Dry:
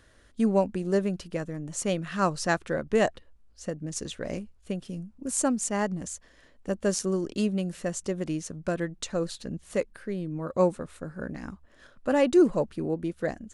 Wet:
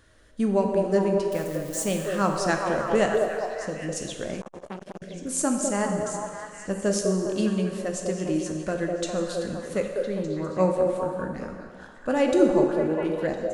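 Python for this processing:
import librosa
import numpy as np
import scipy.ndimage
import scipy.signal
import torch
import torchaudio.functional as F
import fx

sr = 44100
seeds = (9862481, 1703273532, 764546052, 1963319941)

p1 = fx.crossing_spikes(x, sr, level_db=-31.0, at=(1.31, 2.06))
p2 = fx.wow_flutter(p1, sr, seeds[0], rate_hz=2.1, depth_cents=16.0)
p3 = p2 + fx.echo_stepped(p2, sr, ms=202, hz=510.0, octaves=0.7, feedback_pct=70, wet_db=-0.5, dry=0)
p4 = fx.rev_plate(p3, sr, seeds[1], rt60_s=1.7, hf_ratio=0.85, predelay_ms=0, drr_db=3.5)
y = fx.transformer_sat(p4, sr, knee_hz=1200.0, at=(4.41, 5.02))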